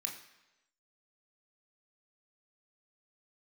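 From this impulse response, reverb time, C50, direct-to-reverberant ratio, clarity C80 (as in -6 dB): 1.0 s, 8.0 dB, 0.5 dB, 10.5 dB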